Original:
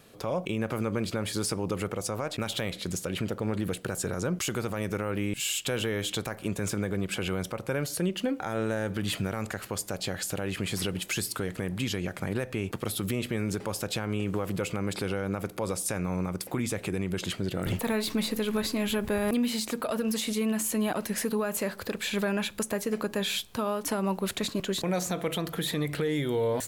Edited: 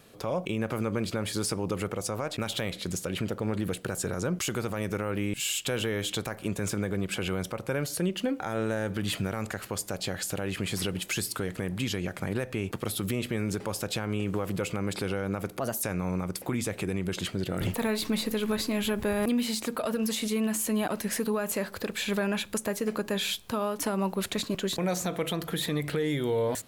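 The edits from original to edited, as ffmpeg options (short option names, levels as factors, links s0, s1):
-filter_complex "[0:a]asplit=3[s0][s1][s2];[s0]atrim=end=15.604[s3];[s1]atrim=start=15.6:end=15.88,asetpts=PTS-STARTPTS,asetrate=54243,aresample=44100,atrim=end_sample=10039,asetpts=PTS-STARTPTS[s4];[s2]atrim=start=15.876[s5];[s3][s4]acrossfade=d=0.004:c1=hsin:c2=hsin[s6];[s6][s5]acrossfade=d=0.004:c1=hsin:c2=hsin"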